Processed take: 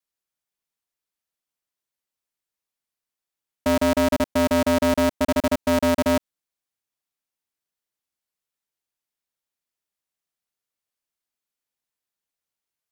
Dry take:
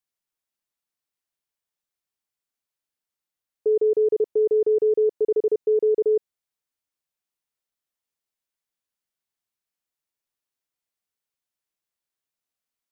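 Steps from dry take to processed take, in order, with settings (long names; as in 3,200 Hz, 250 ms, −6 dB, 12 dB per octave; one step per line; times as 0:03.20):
one scale factor per block 7 bits
pitch vibrato 0.81 Hz 11 cents
ring modulator with a square carrier 170 Hz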